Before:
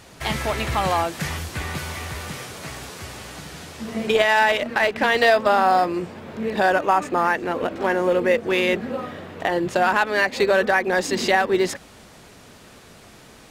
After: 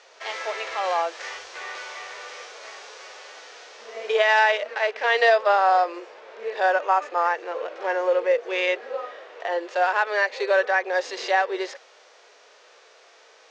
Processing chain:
elliptic band-pass filter 470–6,200 Hz, stop band 40 dB
harmonic and percussive parts rebalanced percussive −10 dB

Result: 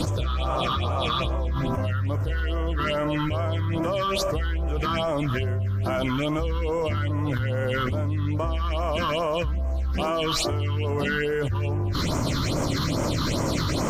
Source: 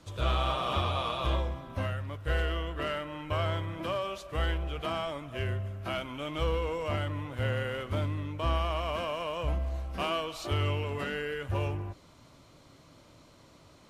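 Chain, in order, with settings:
all-pass phaser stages 6, 2.4 Hz, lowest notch 610–3,900 Hz
envelope flattener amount 100%

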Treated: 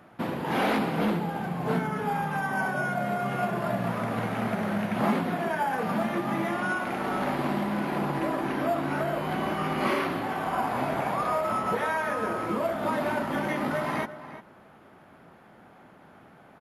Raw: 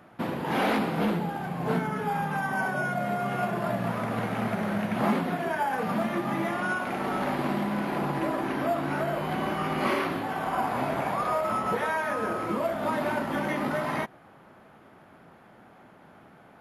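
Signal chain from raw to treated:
slap from a distant wall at 60 metres, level −13 dB

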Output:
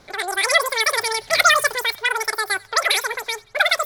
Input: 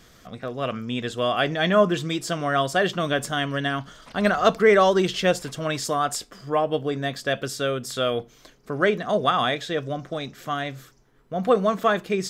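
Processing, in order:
feedback echo with a high-pass in the loop 286 ms, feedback 64%, high-pass 730 Hz, level −21.5 dB
low-pass that shuts in the quiet parts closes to 1,600 Hz, open at −17 dBFS
change of speed 3.19×
level +3 dB

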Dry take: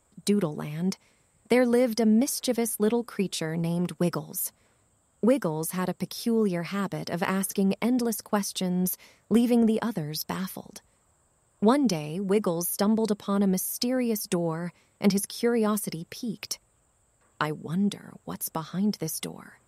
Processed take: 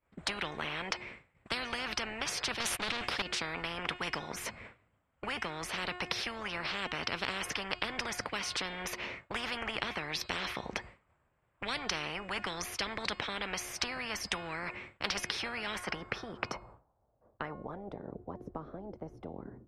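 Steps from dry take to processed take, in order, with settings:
hum removal 359.4 Hz, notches 14
0:02.60–0:03.22: leveller curve on the samples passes 3
downward expander −53 dBFS
low-pass filter sweep 2,300 Hz → 310 Hz, 0:15.51–0:18.32
every bin compressed towards the loudest bin 10 to 1
level −4 dB

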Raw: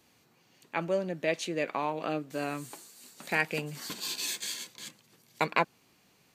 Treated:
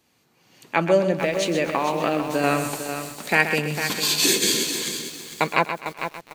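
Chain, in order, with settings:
0:01.12–0:02.44: downward compressor, threshold −33 dBFS, peak gain reduction 10 dB
0:04.24–0:04.64: low shelf with overshoot 570 Hz +10.5 dB, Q 3
automatic gain control gain up to 15.5 dB
repeating echo 127 ms, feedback 31%, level −9 dB
feedback echo at a low word length 451 ms, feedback 35%, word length 6 bits, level −8.5 dB
level −1 dB

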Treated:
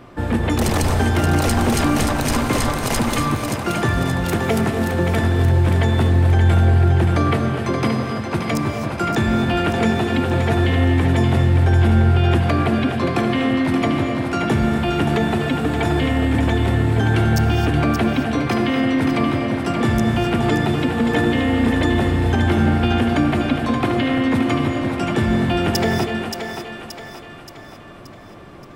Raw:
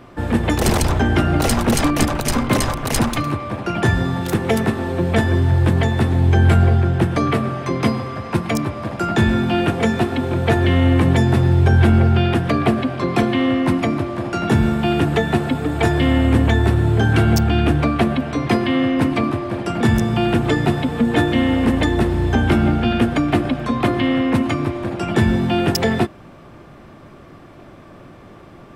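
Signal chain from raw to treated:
brickwall limiter −10 dBFS, peak gain reduction 7 dB
feedback echo with a high-pass in the loop 576 ms, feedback 50%, level −6 dB
reverb whose tail is shaped and stops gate 290 ms rising, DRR 7 dB

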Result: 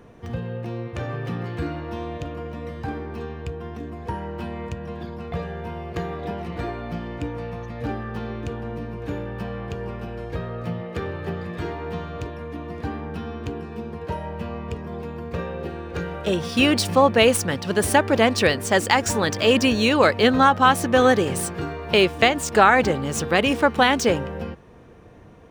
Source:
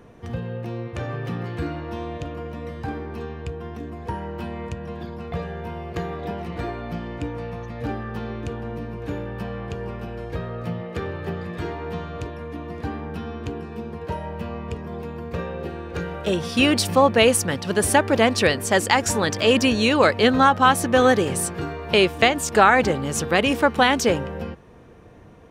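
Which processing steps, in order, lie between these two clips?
running median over 3 samples

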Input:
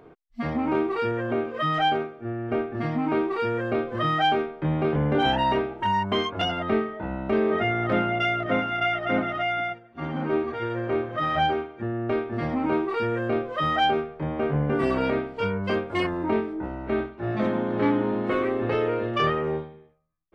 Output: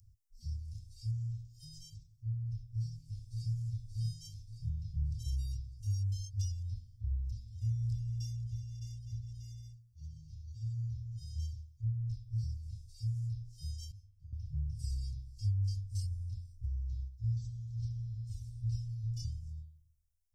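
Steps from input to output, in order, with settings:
0:02.51–0:03.53: delay throw 580 ms, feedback 55%, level −4 dB
Chebyshev band-stop filter 110–5,200 Hz, order 5
0:13.92–0:14.33: tuned comb filter 99 Hz, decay 0.28 s, harmonics all, mix 100%
level +4.5 dB

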